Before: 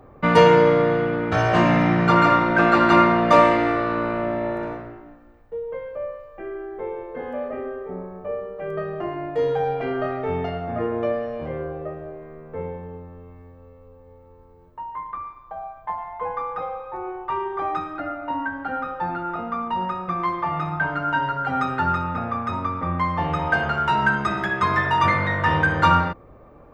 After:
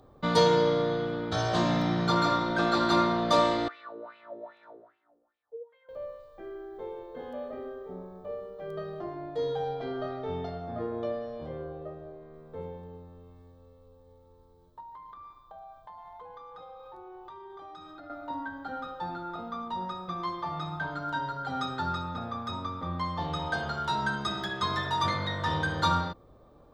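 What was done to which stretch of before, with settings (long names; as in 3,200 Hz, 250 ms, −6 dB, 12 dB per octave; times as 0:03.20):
0:03.68–0:05.89: LFO wah 2.5 Hz 410–2,700 Hz, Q 5.4
0:09.00–0:12.34: high-shelf EQ 4,600 Hz −7.5 dB
0:14.80–0:18.10: downward compressor, threshold −34 dBFS
whole clip: high shelf with overshoot 2,900 Hz +8 dB, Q 3; notch filter 2,800 Hz, Q 12; level −8.5 dB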